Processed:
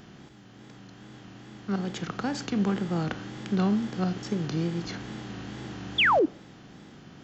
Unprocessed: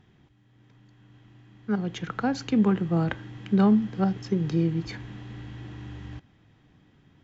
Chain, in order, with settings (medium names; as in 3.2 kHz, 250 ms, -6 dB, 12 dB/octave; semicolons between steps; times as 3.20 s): spectral levelling over time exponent 0.6; treble shelf 4.5 kHz +10.5 dB; wow and flutter 97 cents; painted sound fall, 5.98–6.26 s, 270–3700 Hz -14 dBFS; on a send: reverberation RT60 0.60 s, pre-delay 6 ms, DRR 24 dB; on the sum: trim -6.5 dB